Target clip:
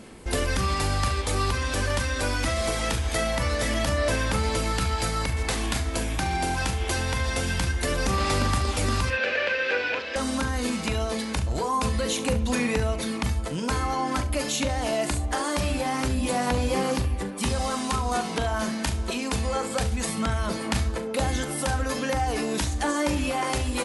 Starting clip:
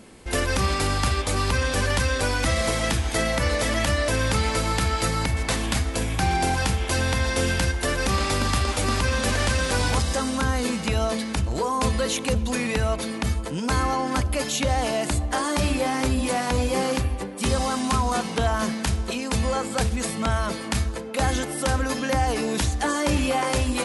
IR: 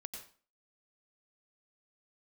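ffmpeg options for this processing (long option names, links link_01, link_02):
-filter_complex "[0:a]acompressor=threshold=-24dB:ratio=3,aphaser=in_gain=1:out_gain=1:delay=3.3:decay=0.24:speed=0.24:type=sinusoidal,asettb=1/sr,asplit=3[link_01][link_02][link_03];[link_01]atrim=end=9.104[link_04];[link_02]atrim=start=9.1:end=10.16,asetpts=PTS-STARTPTS,afade=type=in:duration=0.004:curve=qsin,afade=type=out:start_time=1.056:duration=0.004:curve=qsin,highpass=420,equalizer=frequency=510:width_type=q:width=4:gain=9,equalizer=frequency=760:width_type=q:width=4:gain=-6,equalizer=frequency=1100:width_type=q:width=4:gain=-8,equalizer=frequency=1600:width_type=q:width=4:gain=8,equalizer=frequency=2500:width_type=q:width=4:gain=10,equalizer=frequency=3700:width_type=q:width=4:gain=-3,lowpass=frequency=4000:width=0.5412,lowpass=frequency=4000:width=1.3066[link_05];[link_03]atrim=start=10.156[link_06];[link_04][link_05]acrossfade=duration=0.004:curve1=hsin:curve2=qsin[link_07];[link_07][link_06]acrossfade=duration=0.004:curve1=qsin:curve2=hsin,aecho=1:1:41|70:0.266|0.178"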